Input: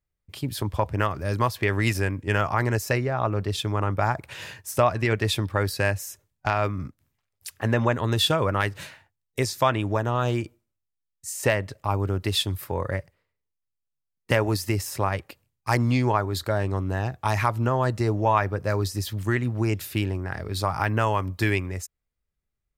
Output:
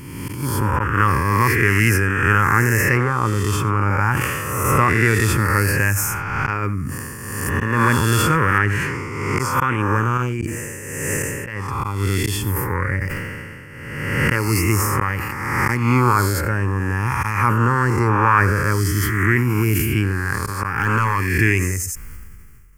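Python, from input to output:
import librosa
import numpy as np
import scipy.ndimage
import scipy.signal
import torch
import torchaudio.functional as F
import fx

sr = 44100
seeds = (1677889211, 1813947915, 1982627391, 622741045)

y = fx.spec_swells(x, sr, rise_s=1.46)
y = fx.lowpass(y, sr, hz=2500.0, slope=6, at=(8.58, 9.39))
y = fx.over_compress(y, sr, threshold_db=-28.0, ratio=-0.5, at=(10.17, 11.47))
y = y + 10.0 ** (-18.5 / 20.0) * np.pad(y, (int(89 * sr / 1000.0), 0))[:len(y)]
y = fx.auto_swell(y, sr, attack_ms=214.0)
y = fx.overload_stage(y, sr, gain_db=16.0, at=(20.72, 21.28), fade=0.02)
y = fx.fixed_phaser(y, sr, hz=1600.0, stages=4)
y = fx.sustainer(y, sr, db_per_s=27.0)
y = y * 10.0 ** (6.0 / 20.0)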